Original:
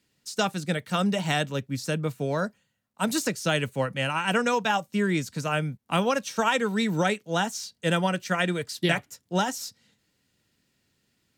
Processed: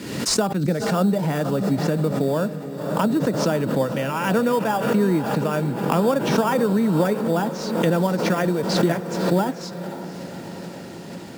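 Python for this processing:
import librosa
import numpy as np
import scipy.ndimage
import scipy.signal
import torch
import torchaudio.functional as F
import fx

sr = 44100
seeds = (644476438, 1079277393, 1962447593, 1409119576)

p1 = fx.recorder_agc(x, sr, target_db=-18.0, rise_db_per_s=44.0, max_gain_db=30)
p2 = scipy.signal.sosfilt(scipy.signal.butter(2, 250.0, 'highpass', fs=sr, output='sos'), p1)
p3 = fx.tilt_eq(p2, sr, slope=-3.5)
p4 = fx.env_lowpass_down(p3, sr, base_hz=1600.0, full_db=-20.0)
p5 = fx.sample_hold(p4, sr, seeds[0], rate_hz=4100.0, jitter_pct=0)
p6 = p4 + F.gain(torch.from_numpy(p5), -10.5).numpy()
p7 = fx.high_shelf(p6, sr, hz=6300.0, db=7.5)
p8 = fx.notch(p7, sr, hz=740.0, q=21.0)
p9 = p8 + fx.echo_diffused(p8, sr, ms=531, feedback_pct=69, wet_db=-12.0, dry=0)
y = fx.pre_swell(p9, sr, db_per_s=48.0)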